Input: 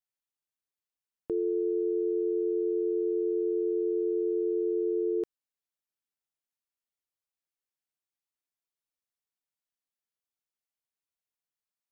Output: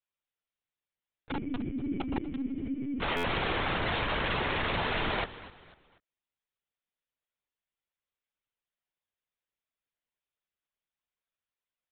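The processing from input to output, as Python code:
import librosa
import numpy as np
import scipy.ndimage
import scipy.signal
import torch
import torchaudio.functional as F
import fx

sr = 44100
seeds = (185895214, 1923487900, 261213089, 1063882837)

y = x + 0.51 * np.pad(x, (int(3.5 * sr / 1000.0), 0))[:len(x)]
y = fx.noise_vocoder(y, sr, seeds[0], bands=3)
y = fx.formant_cascade(y, sr, vowel='i', at=(1.31, 3.02))
y = (np.mod(10.0 ** (26.5 / 20.0) * y + 1.0, 2.0) - 1.0) / 10.0 ** (26.5 / 20.0)
y = fx.echo_feedback(y, sr, ms=246, feedback_pct=36, wet_db=-16.0)
y = fx.lpc_vocoder(y, sr, seeds[1], excitation='pitch_kept', order=16)
y = fx.buffer_glitch(y, sr, at_s=(3.16,), block=512, repeats=6)
y = y * librosa.db_to_amplitude(2.0)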